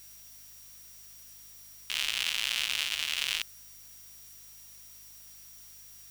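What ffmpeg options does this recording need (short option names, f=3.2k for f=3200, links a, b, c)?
-af "bandreject=f=51.5:t=h:w=4,bandreject=f=103:t=h:w=4,bandreject=f=154.5:t=h:w=4,bandreject=f=206:t=h:w=4,bandreject=f=257.5:t=h:w=4,bandreject=f=5.7k:w=30,afftdn=nr=29:nf=-51"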